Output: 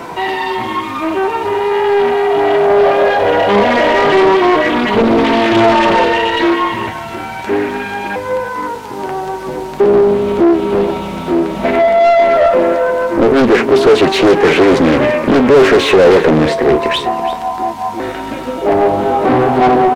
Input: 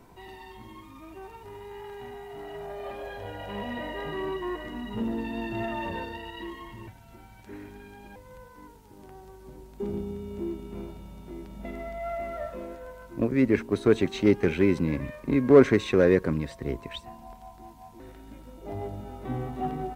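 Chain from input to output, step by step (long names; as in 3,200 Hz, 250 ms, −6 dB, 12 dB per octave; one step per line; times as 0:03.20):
flanger 0.21 Hz, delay 5.8 ms, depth 7.9 ms, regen +65%
mid-hump overdrive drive 40 dB, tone 2,700 Hz, clips at −4.5 dBFS
on a send: single-tap delay 336 ms −15 dB
on the sum: dynamic equaliser 450 Hz, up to +6 dB, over −25 dBFS, Q 0.82
in parallel at −2.5 dB: downward compressor, threshold −20 dBFS, peak gain reduction 14 dB
on the sum: highs frequency-modulated by the lows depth 0.44 ms
level −1 dB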